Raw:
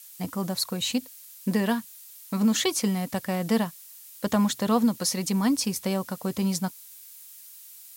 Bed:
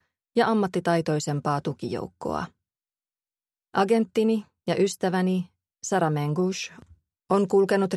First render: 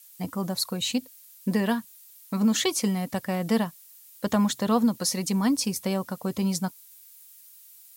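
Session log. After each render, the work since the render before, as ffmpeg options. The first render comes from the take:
-af "afftdn=nr=6:nf=-47"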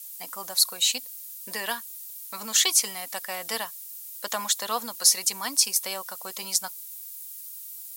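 -af "highpass=780,highshelf=f=3.6k:g=11"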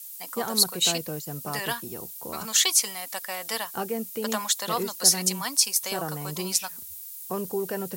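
-filter_complex "[1:a]volume=-9.5dB[a];[0:a][a]amix=inputs=2:normalize=0"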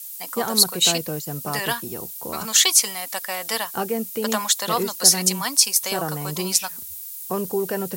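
-af "volume=5dB,alimiter=limit=-1dB:level=0:latency=1"

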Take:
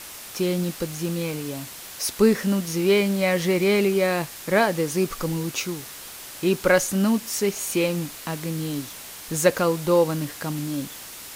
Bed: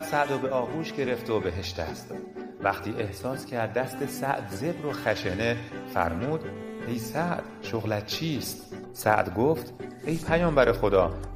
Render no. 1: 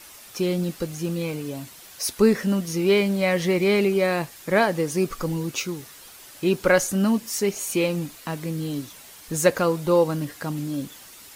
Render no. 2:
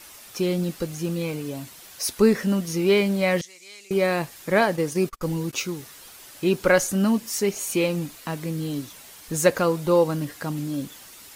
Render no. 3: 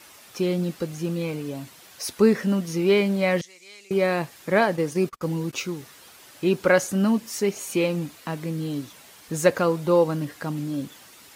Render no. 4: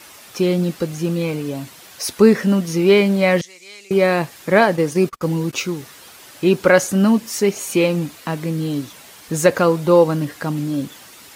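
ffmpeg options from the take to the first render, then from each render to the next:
-af "afftdn=nr=8:nf=-40"
-filter_complex "[0:a]asettb=1/sr,asplit=3[a][b][c];[a]atrim=end=3.414[d];[b]atrim=start=3.41:end=3.91,asetpts=PTS-STARTPTS,afade=t=in:d=0.004:c=qsin,afade=t=out:st=0.496:d=0.004:c=qsin,bandpass=f=6.9k:t=q:w=2.9[e];[c]atrim=start=3.906[f];[d][e]acrossfade=d=0.004:c1=hsin:c2=qsin[g];[g][f]acrossfade=d=0.004:c1=qsin:c2=hsin,asettb=1/sr,asplit=3[h][i][j];[h]atrim=end=4.614[k];[i]atrim=start=4.61:end=5.53,asetpts=PTS-STARTPTS,afade=t=in:d=0.004:c=qsin,afade=t=out:st=0.916:d=0.004:c=qsin,agate=range=-36dB:threshold=-32dB:ratio=16:release=100:detection=peak[l];[j]atrim=start=5.526[m];[k][l]acrossfade=d=0.004:c1=hsin:c2=qsin[n];[n][m]acrossfade=d=0.004:c1=qsin:c2=hsin"
-af "highpass=82,highshelf=f=5.1k:g=-6.5"
-af "volume=6.5dB,alimiter=limit=-1dB:level=0:latency=1"

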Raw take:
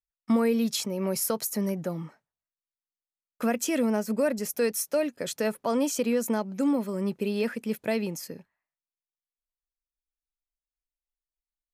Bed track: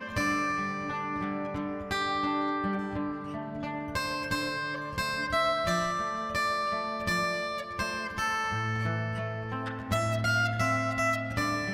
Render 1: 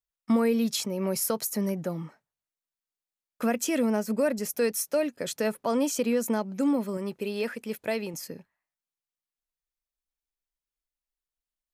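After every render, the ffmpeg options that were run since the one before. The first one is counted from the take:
-filter_complex "[0:a]asettb=1/sr,asplit=3[a][b][c];[a]atrim=end=6.974[d];[b]atrim=start=6.97:end=8.14,asetpts=PTS-STARTPTS,afade=t=in:d=0.004:c=qsin,afade=t=out:st=1.166:d=0.004:c=qsin,equalizer=f=190:w=0.89:g=-6[e];[c]atrim=start=8.136[f];[d][e]acrossfade=d=0.004:c1=hsin:c2=qsin[g];[g][f]acrossfade=d=0.004:c1=qsin:c2=hsin"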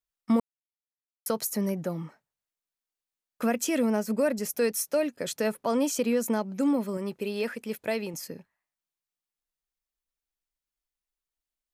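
-filter_complex "[0:a]asplit=3[a][b][c];[a]atrim=end=0.4,asetpts=PTS-STARTPTS,afade=t=out:st=0.396:d=0.004:c=hsin[d];[b]atrim=start=0.4:end=1.26,asetpts=PTS-STARTPTS,volume=0[e];[c]atrim=start=1.26,asetpts=PTS-STARTPTS,afade=t=in:d=0.004:c=hsin[f];[d][e][f]concat=n=3:v=0:a=1"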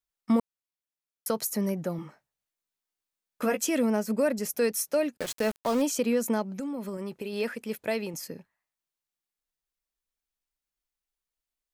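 -filter_complex "[0:a]asettb=1/sr,asplit=3[a][b][c];[a]atrim=end=1.974[d];[b]atrim=start=1.97:end=3.66,asetpts=PTS-STARTPTS,afade=t=in:d=0.004:c=qsin,afade=t=out:st=1.686:d=0.004:c=qsin,asplit=2[e][f];[f]adelay=15,volume=-5dB[g];[e][g]amix=inputs=2:normalize=0,atrim=end_sample=74529[h];[c]atrim=start=3.656[i];[d][h]acrossfade=d=0.004:c1=hsin:c2=qsin[j];[j][i]acrossfade=d=0.004:c1=qsin:c2=hsin,asettb=1/sr,asplit=3[k][l][m];[k]atrim=end=5.174[n];[l]atrim=start=5.17:end=5.82,asetpts=PTS-STARTPTS,afade=t=in:d=0.004:c=qsin,afade=t=out:st=0.646:d=0.004:c=qsin,aeval=exprs='val(0)*gte(abs(val(0)),0.0237)':c=same[o];[m]atrim=start=5.816[p];[n][o]acrossfade=d=0.004:c1=hsin:c2=qsin[q];[q][p]acrossfade=d=0.004:c1=qsin:c2=hsin,asettb=1/sr,asplit=3[r][s][t];[r]atrim=end=6.514[u];[s]atrim=start=6.51:end=7.33,asetpts=PTS-STARTPTS,afade=t=in:d=0.004:c=qsin,afade=t=out:st=0.816:d=0.004:c=qsin,acompressor=threshold=-30dB:ratio=12:attack=3.2:release=140:knee=1:detection=peak[v];[t]atrim=start=7.326[w];[u][v]acrossfade=d=0.004:c1=hsin:c2=qsin[x];[x][w]acrossfade=d=0.004:c1=qsin:c2=hsin"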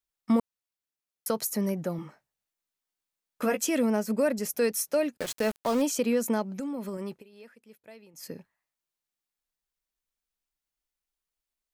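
-filter_complex "[0:a]asplit=3[a][b][c];[a]atrim=end=7.24,asetpts=PTS-STARTPTS,afade=t=out:st=7.11:d=0.13:silence=0.1[d];[b]atrim=start=7.24:end=8.15,asetpts=PTS-STARTPTS,volume=-20dB[e];[c]atrim=start=8.15,asetpts=PTS-STARTPTS,afade=t=in:d=0.13:silence=0.1[f];[d][e][f]concat=n=3:v=0:a=1"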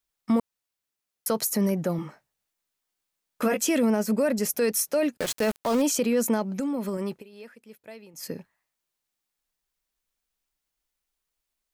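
-af "acontrast=36,alimiter=limit=-16dB:level=0:latency=1:release=13"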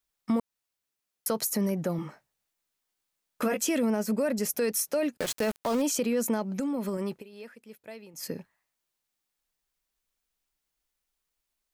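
-af "acompressor=threshold=-30dB:ratio=1.5"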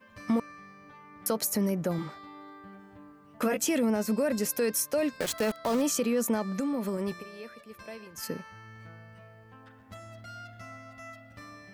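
-filter_complex "[1:a]volume=-18dB[a];[0:a][a]amix=inputs=2:normalize=0"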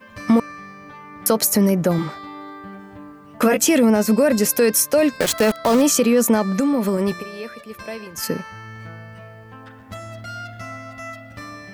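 -af "volume=11.5dB"

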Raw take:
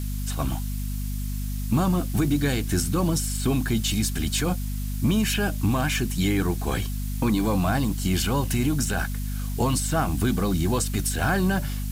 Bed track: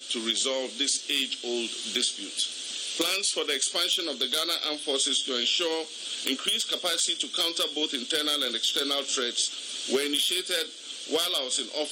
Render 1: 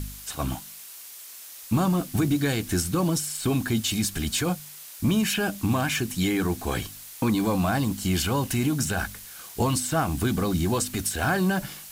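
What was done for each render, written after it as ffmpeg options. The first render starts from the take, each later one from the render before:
-af "bandreject=f=50:t=h:w=4,bandreject=f=100:t=h:w=4,bandreject=f=150:t=h:w=4,bandreject=f=200:t=h:w=4,bandreject=f=250:t=h:w=4"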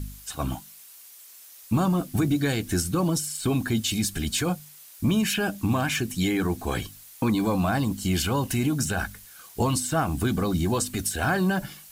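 -af "afftdn=nr=7:nf=-43"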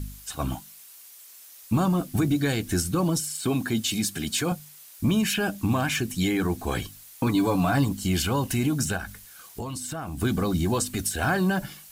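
-filter_complex "[0:a]asettb=1/sr,asplit=3[a][b][c];[a]atrim=end=3.204[d];[b]atrim=start=3.2:end=4.52,asetpts=PTS-STARTPTS,afade=t=in:d=0.004:c=qsin,afade=t=out:st=1.316:d=0.004:c=qsin,highpass=130[e];[c]atrim=start=4.516[f];[d][e]acrossfade=d=0.004:c1=hsin:c2=qsin[g];[g][f]acrossfade=d=0.004:c1=qsin:c2=hsin,asettb=1/sr,asplit=3[h][i][j];[h]atrim=end=7.264[k];[i]atrim=start=7.26:end=7.89,asetpts=PTS-STARTPTS,afade=t=in:d=0.004:c=qsin,afade=t=out:st=0.626:d=0.004:c=qsin,aecho=1:1:7:0.63,atrim=end_sample=27783[l];[j]atrim=start=7.886[m];[k][l]acrossfade=d=0.004:c1=hsin:c2=qsin[n];[n][m]acrossfade=d=0.004:c1=qsin:c2=hsin,asplit=3[o][p][q];[o]afade=t=out:st=8.96:d=0.02[r];[p]acompressor=threshold=-30dB:ratio=6:attack=3.2:release=140:knee=1:detection=peak,afade=t=in:st=8.96:d=0.02,afade=t=out:st=10.21:d=0.02[s];[q]afade=t=in:st=10.21:d=0.02[t];[r][s][t]amix=inputs=3:normalize=0"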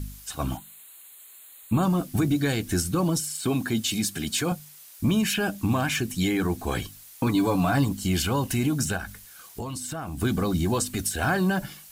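-filter_complex "[0:a]asettb=1/sr,asplit=3[a][b][c];[a]atrim=end=0.574[d];[b]atrim=start=0.57:end=1.83,asetpts=PTS-STARTPTS,afade=t=in:d=0.004:c=qsin,afade=t=out:st=1.256:d=0.004:c=qsin,asuperstop=centerf=5400:order=12:qfactor=2.3[e];[c]atrim=start=1.826[f];[d][e]acrossfade=d=0.004:c1=hsin:c2=qsin[g];[g][f]acrossfade=d=0.004:c1=qsin:c2=hsin"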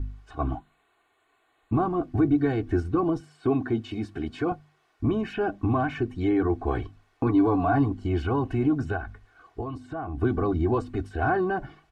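-af "lowpass=1.2k,aecho=1:1:2.7:0.74"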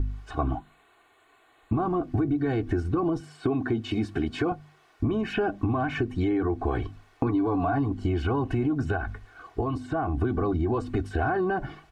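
-filter_complex "[0:a]asplit=2[a][b];[b]alimiter=limit=-19.5dB:level=0:latency=1,volume=2.5dB[c];[a][c]amix=inputs=2:normalize=0,acompressor=threshold=-23dB:ratio=5"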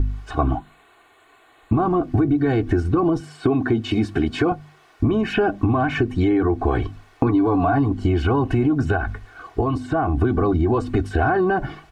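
-af "volume=7dB"

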